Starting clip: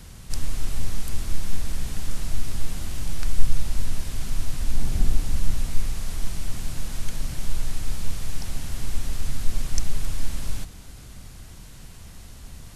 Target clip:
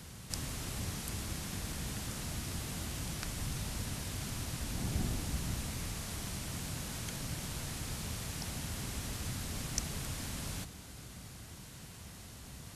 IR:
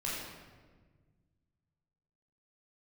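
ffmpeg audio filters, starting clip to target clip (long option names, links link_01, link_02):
-af "highpass=84,volume=-2.5dB"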